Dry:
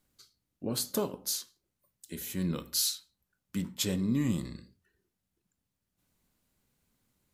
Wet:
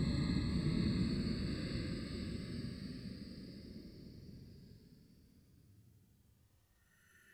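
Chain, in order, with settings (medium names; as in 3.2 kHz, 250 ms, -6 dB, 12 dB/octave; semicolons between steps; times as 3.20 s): Paulstretch 21×, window 0.05 s, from 4.51 s; ever faster or slower copies 493 ms, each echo +1 st, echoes 3, each echo -6 dB; trim +6 dB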